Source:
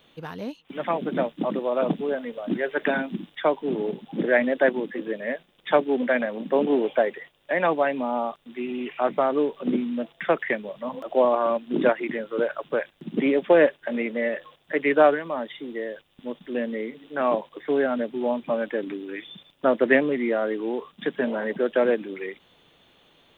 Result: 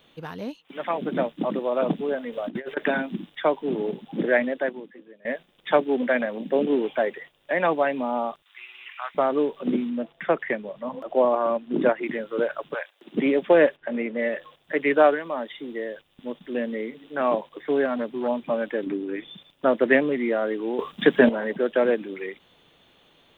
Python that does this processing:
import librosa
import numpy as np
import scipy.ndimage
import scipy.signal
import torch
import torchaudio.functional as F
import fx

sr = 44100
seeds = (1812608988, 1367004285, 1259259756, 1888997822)

y = fx.low_shelf(x, sr, hz=250.0, db=-11.0, at=(0.57, 0.98))
y = fx.over_compress(y, sr, threshold_db=-31.0, ratio=-0.5, at=(2.32, 2.77))
y = fx.peak_eq(y, sr, hz=fx.line((6.38, 1400.0), (7.01, 460.0)), db=-10.0, octaves=0.49, at=(6.38, 7.01), fade=0.02)
y = fx.highpass(y, sr, hz=1100.0, slope=24, at=(8.42, 9.15))
y = fx.high_shelf(y, sr, hz=2900.0, db=-8.5, at=(9.9, 12.03))
y = fx.highpass(y, sr, hz=fx.line((12.73, 750.0), (13.14, 310.0)), slope=24, at=(12.73, 13.14), fade=0.02)
y = fx.air_absorb(y, sr, metres=260.0, at=(13.76, 14.19))
y = fx.peak_eq(y, sr, hz=110.0, db=-13.0, octaves=0.77, at=(14.97, 15.61))
y = fx.transformer_sat(y, sr, knee_hz=600.0, at=(17.85, 18.28))
y = fx.tilt_shelf(y, sr, db=5.5, hz=1300.0, at=(18.86, 19.28))
y = fx.edit(y, sr, fx.fade_out_to(start_s=4.32, length_s=0.93, curve='qua', floor_db=-21.0),
    fx.clip_gain(start_s=20.79, length_s=0.5, db=9.5), tone=tone)